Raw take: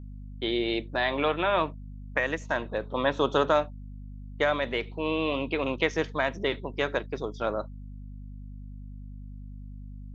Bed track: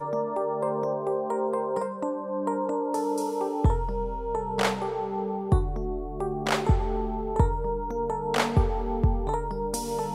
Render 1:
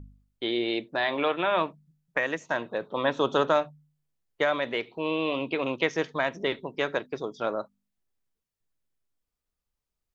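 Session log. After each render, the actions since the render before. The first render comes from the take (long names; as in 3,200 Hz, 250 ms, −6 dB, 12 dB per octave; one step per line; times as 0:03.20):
hum removal 50 Hz, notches 5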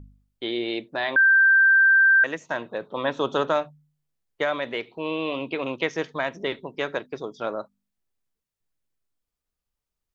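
0:01.16–0:02.24: beep over 1,570 Hz −13 dBFS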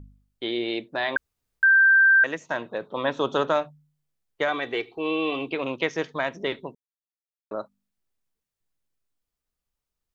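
0:01.17–0:01.63: fill with room tone
0:04.48–0:05.52: comb filter 2.6 ms
0:06.75–0:07.51: silence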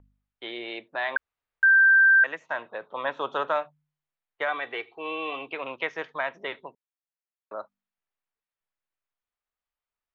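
three-way crossover with the lows and the highs turned down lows −15 dB, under 580 Hz, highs −18 dB, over 3,100 Hz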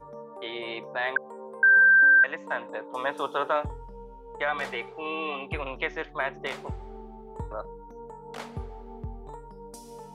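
mix in bed track −14.5 dB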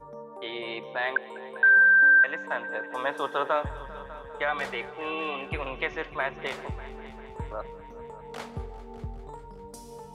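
echo machine with several playback heads 199 ms, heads all three, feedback 59%, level −21 dB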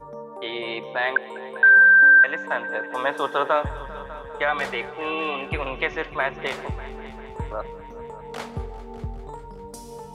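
level +5 dB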